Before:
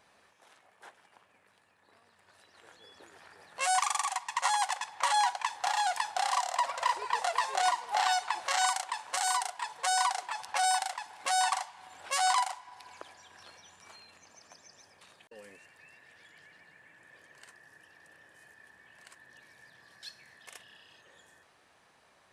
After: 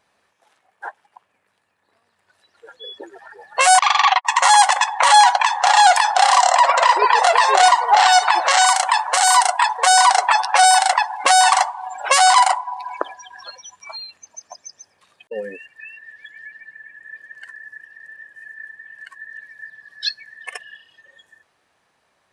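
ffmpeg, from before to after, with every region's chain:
-filter_complex "[0:a]asettb=1/sr,asplit=3[s0][s1][s2];[s0]atrim=end=3.794[s3];[s1]atrim=start=3.79:end=4.25,asetpts=PTS-STARTPTS,afade=t=in:d=0.004:c=qsin,afade=t=out:st=0.456:d=0.004:c=qsin,aemphasis=mode=production:type=riaa,agate=range=0.00126:threshold=0.0251:ratio=16:release=100:detection=peak,lowpass=f=3800:w=0.5412,lowpass=f=3800:w=1.3066[s4];[s2]atrim=start=4.246[s5];[s3][s4]acrossfade=d=0.004:c1=hsin:c2=qsin[s6];[s6][s5]acrossfade=d=0.004:c1=qsin:c2=hsin,afftdn=nr=26:nf=-46,acompressor=threshold=0.0282:ratio=2.5,alimiter=level_in=21.1:limit=0.891:release=50:level=0:latency=1,volume=0.794"

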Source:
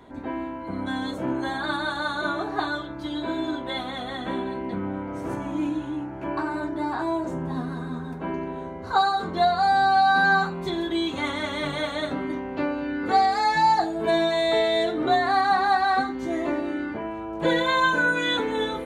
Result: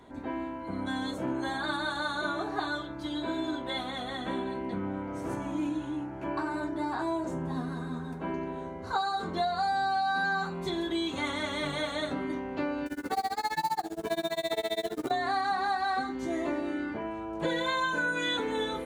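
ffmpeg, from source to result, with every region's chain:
-filter_complex "[0:a]asettb=1/sr,asplit=3[s0][s1][s2];[s0]atrim=end=12.864[s3];[s1]atrim=start=12.86:end=15.11,asetpts=PTS-STARTPTS,afade=t=in:d=0.004:c=qsin,afade=t=out:st=2.246:d=0.004:c=qsin,acrusher=bits=5:mode=log:mix=0:aa=0.000001,tremolo=f=15:d=0.98[s4];[s2]atrim=start=15.106[s5];[s3][s4]acrossfade=d=0.004:c1=hsin:c2=qsin[s6];[s6][s5]acrossfade=d=0.004:c1=qsin:c2=hsin,equalizer=f=8100:t=o:w=1.5:g=4.5,acompressor=threshold=0.0794:ratio=6,volume=0.631"

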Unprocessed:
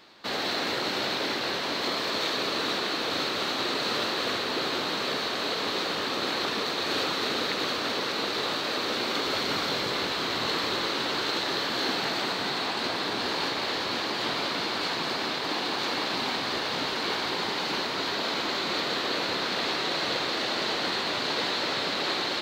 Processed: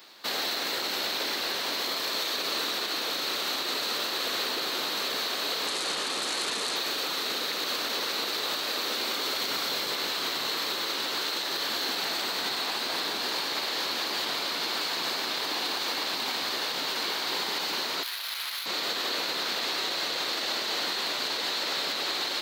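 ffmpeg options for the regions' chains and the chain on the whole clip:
-filter_complex "[0:a]asettb=1/sr,asplit=3[s0][s1][s2];[s0]atrim=end=5.674[s3];[s1]atrim=start=5.67:end=6.76,asetpts=PTS-STARTPTS,afade=t=in:d=0.004:c=qsin,afade=t=out:st=1.086:d=0.004:c=qsin,bandreject=f=5600:w=15,aeval=exprs='0.0596*(abs(mod(val(0)/0.0596+3,4)-2)-1)':c=same,lowpass=f=10000:w=0.5412,lowpass=f=10000:w=1.3066[s4];[s2]atrim=start=6.756[s5];[s3][s4]acrossfade=d=0.004:c1=hsin:c2=qsin[s6];[s6][s5]acrossfade=d=0.004:c1=qsin:c2=hsin,asettb=1/sr,asplit=3[s7][s8][s9];[s7]atrim=end=18.034[s10];[s8]atrim=start=18.03:end=18.66,asetpts=PTS-STARTPTS,afade=t=in:d=0.004:c=qsin,afade=t=out:st=0.626:d=0.004:c=qsin,highpass=1400,adynamicsmooth=sensitivity=6:basefreq=2500[s11];[s9]atrim=start=18.656[s12];[s10][s11]acrossfade=d=0.004:c1=hsin:c2=qsin[s13];[s13][s12]acrossfade=d=0.004:c1=qsin:c2=hsin,highpass=87,aemphasis=mode=production:type=bsi,alimiter=limit=0.0944:level=0:latency=1:release=102"

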